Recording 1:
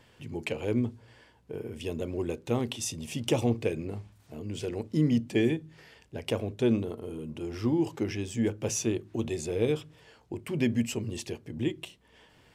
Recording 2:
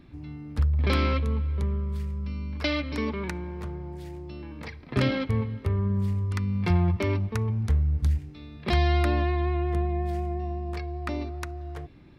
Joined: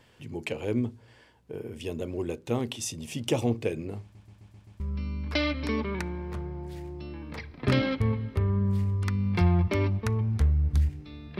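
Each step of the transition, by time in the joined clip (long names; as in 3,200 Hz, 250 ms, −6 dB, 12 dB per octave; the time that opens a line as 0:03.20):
recording 1
0:04.02: stutter in place 0.13 s, 6 plays
0:04.80: continue with recording 2 from 0:02.09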